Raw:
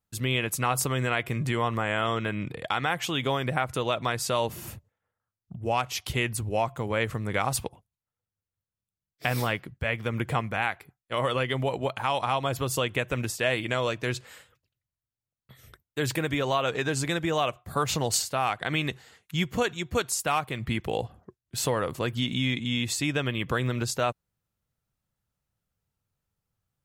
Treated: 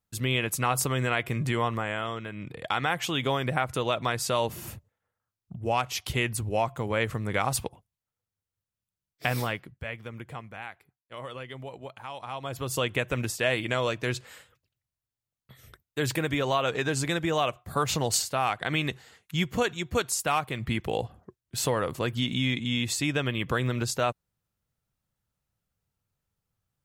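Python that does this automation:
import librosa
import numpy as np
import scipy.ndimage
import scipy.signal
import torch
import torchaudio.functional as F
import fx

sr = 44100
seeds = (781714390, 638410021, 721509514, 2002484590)

y = fx.gain(x, sr, db=fx.line((1.62, 0.0), (2.3, -8.5), (2.73, 0.0), (9.27, 0.0), (10.26, -12.5), (12.19, -12.5), (12.84, 0.0)))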